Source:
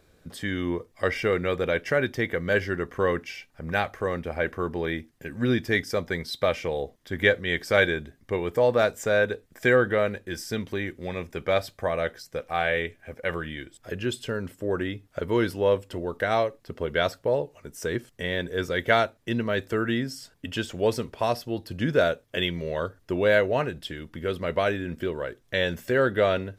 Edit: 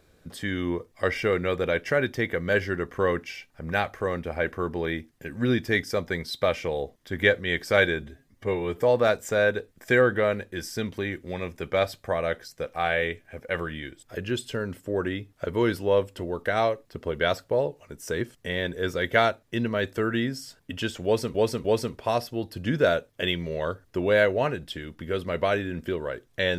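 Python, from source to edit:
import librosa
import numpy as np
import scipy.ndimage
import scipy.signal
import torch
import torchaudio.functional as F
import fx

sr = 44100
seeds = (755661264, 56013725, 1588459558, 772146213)

y = fx.edit(x, sr, fx.stretch_span(start_s=8.02, length_s=0.51, factor=1.5),
    fx.repeat(start_s=20.79, length_s=0.3, count=3), tone=tone)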